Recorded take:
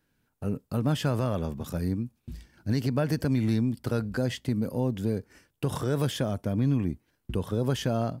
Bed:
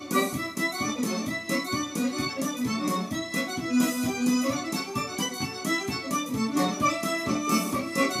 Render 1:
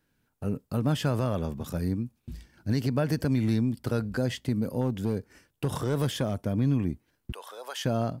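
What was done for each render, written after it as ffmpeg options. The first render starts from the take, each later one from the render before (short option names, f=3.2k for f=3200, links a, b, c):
-filter_complex "[0:a]asettb=1/sr,asplit=3[a][b][c];[a]atrim=end=4.814[d];[b]atrim=start=4.81:end=6.46,asetpts=PTS-STARTPTS,afade=t=in:d=0.004:c=qsin,afade=t=out:st=1.646:d=0.004:c=qsin,asoftclip=type=hard:threshold=-19.5dB[e];[c]atrim=start=6.456[f];[d][e]acrossfade=d=0.004:c1=hsin:c2=qsin[g];[g][f]acrossfade=d=0.004:c1=qsin:c2=hsin,asettb=1/sr,asplit=3[h][i][j];[h]atrim=end=7.324[k];[i]atrim=start=7.32:end=7.85,asetpts=PTS-STARTPTS,afade=t=in:d=0.004:c=qsin,afade=t=out:st=0.526:d=0.004:c=qsin,highpass=f=670:w=0.5412,highpass=f=670:w=1.3066[l];[j]atrim=start=7.846[m];[k][l]acrossfade=d=0.004:c1=hsin:c2=qsin[n];[n][m]acrossfade=d=0.004:c1=qsin:c2=hsin"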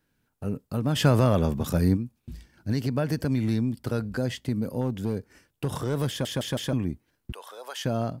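-filter_complex "[0:a]asplit=3[a][b][c];[a]afade=t=out:st=0.95:d=0.02[d];[b]acontrast=89,afade=t=in:st=0.95:d=0.02,afade=t=out:st=1.96:d=0.02[e];[c]afade=t=in:st=1.96:d=0.02[f];[d][e][f]amix=inputs=3:normalize=0,asplit=5[g][h][i][j][k];[g]atrim=end=6.252[l];[h]atrim=start=6.088:end=6.252[m];[i]atrim=start=6.088:end=6.252[n];[j]atrim=start=6.088:end=6.252[o];[k]atrim=start=6.728[p];[l][m]acrossfade=d=0.004:c1=hsin:c2=hsin[q];[q][n]acrossfade=d=0.004:c1=hsin:c2=hsin[r];[r][o]acrossfade=d=0.004:c1=hsin:c2=hsin[s];[s][p]acrossfade=d=0.004:c1=hsin:c2=hsin"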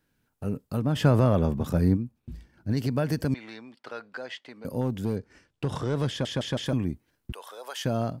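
-filter_complex "[0:a]asettb=1/sr,asplit=3[a][b][c];[a]atrim=end=0.824[d];[b]atrim=start=0.82:end=2.77,asetpts=PTS-STARTPTS,afade=t=in:d=0.004:c=qsin,afade=t=out:st=1.946:d=0.004:c=qsin,highshelf=f=2.4k:g=-9[e];[c]atrim=start=2.766[f];[d][e]acrossfade=d=0.004:c1=hsin:c2=qsin[g];[g][f]acrossfade=d=0.004:c1=qsin:c2=hsin,asettb=1/sr,asplit=3[h][i][j];[h]atrim=end=3.344[k];[i]atrim=start=3.34:end=4.65,asetpts=PTS-STARTPTS,afade=t=in:d=0.004:c=qsin,afade=t=out:st=1.306:d=0.004:c=qsin,highpass=750,lowpass=3.5k[l];[j]atrim=start=4.646[m];[k][l]acrossfade=d=0.004:c1=hsin:c2=qsin[n];[n][m]acrossfade=d=0.004:c1=qsin:c2=hsin,asettb=1/sr,asplit=3[o][p][q];[o]atrim=end=5.164[r];[p]atrim=start=5.16:end=6.66,asetpts=PTS-STARTPTS,afade=t=in:d=0.004:c=qsin,afade=t=out:st=1.496:d=0.004:c=qsin,lowpass=6.2k[s];[q]atrim=start=6.656[t];[r][s]acrossfade=d=0.004:c1=hsin:c2=qsin[u];[u][t]acrossfade=d=0.004:c1=qsin:c2=hsin"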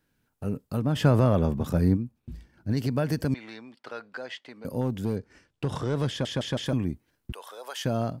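-af anull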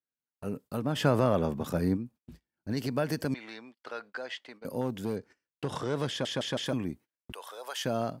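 -af "highpass=f=310:p=1,agate=range=-26dB:threshold=-49dB:ratio=16:detection=peak"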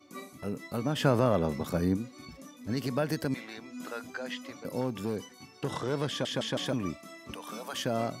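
-filter_complex "[1:a]volume=-19.5dB[a];[0:a][a]amix=inputs=2:normalize=0"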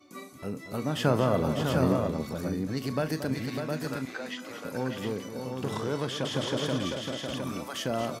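-filter_complex "[0:a]asplit=2[a][b];[b]adelay=38,volume=-13.5dB[c];[a][c]amix=inputs=2:normalize=0,asplit=2[d][e];[e]aecho=0:1:229|600|711:0.282|0.473|0.562[f];[d][f]amix=inputs=2:normalize=0"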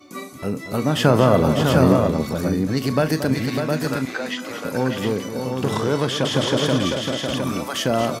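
-af "volume=10dB,alimiter=limit=-2dB:level=0:latency=1"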